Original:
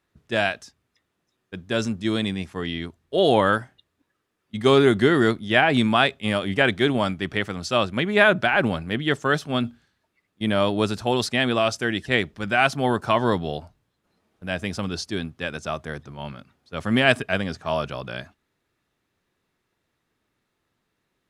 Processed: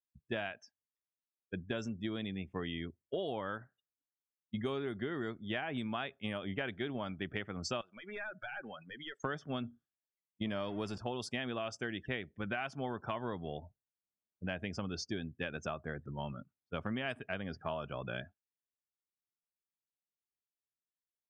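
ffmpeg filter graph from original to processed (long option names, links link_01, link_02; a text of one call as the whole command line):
ffmpeg -i in.wav -filter_complex "[0:a]asettb=1/sr,asplit=3[link_01][link_02][link_03];[link_01]atrim=end=7.814[link_04];[link_02]atrim=start=7.81:end=9.24,asetpts=PTS-STARTPTS,afade=type=in:duration=0.004:curve=qsin,afade=type=out:start_time=1.426:duration=0.004:curve=qsin,highpass=frequency=1200:poles=1,acompressor=threshold=-35dB:ratio=4:attack=3.2:release=140:knee=1:detection=peak,aeval=exprs='clip(val(0),-1,0.0141)':channel_layout=same[link_05];[link_03]atrim=start=9.236[link_06];[link_04][link_05]acrossfade=duration=0.004:curve1=hsin:curve2=qsin[link_07];[link_07][link_06]acrossfade=duration=0.004:curve1=qsin:curve2=hsin,asettb=1/sr,asplit=3[link_08][link_09][link_10];[link_08]atrim=end=10.454[link_11];[link_09]atrim=start=10.45:end=10.98,asetpts=PTS-STARTPTS,afade=type=in:duration=0.004:curve=qsin,afade=type=out:start_time=0.526:duration=0.004:curve=qsin,aeval=exprs='val(0)+0.5*0.0376*sgn(val(0))':channel_layout=same,equalizer=frequency=5000:width_type=o:width=0.49:gain=3.5[link_12];[link_10]atrim=start=10.976[link_13];[link_11][link_12]acrossfade=duration=0.004:curve1=hsin:curve2=qsin[link_14];[link_14][link_13]acrossfade=duration=0.004:curve1=qsin:curve2=hsin,bandreject=frequency=4000:width=6,afftdn=noise_reduction=34:noise_floor=-39,acompressor=threshold=-32dB:ratio=12,volume=-2.5dB" out.wav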